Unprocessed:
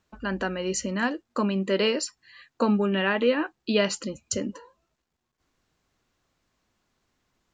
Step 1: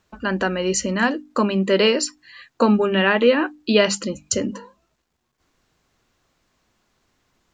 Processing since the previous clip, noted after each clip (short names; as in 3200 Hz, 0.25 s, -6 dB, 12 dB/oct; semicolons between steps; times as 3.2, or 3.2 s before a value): notches 50/100/150/200/250/300 Hz; gain +7 dB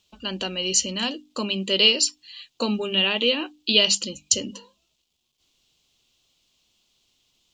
resonant high shelf 2300 Hz +10.5 dB, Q 3; gain -8.5 dB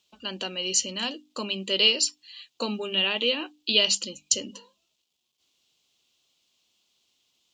HPF 250 Hz 6 dB/oct; gain -3 dB